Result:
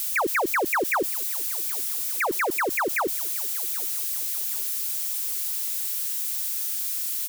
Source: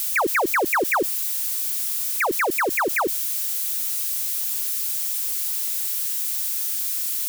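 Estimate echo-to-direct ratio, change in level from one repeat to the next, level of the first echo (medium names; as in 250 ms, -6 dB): -21.0 dB, -7.5 dB, -22.0 dB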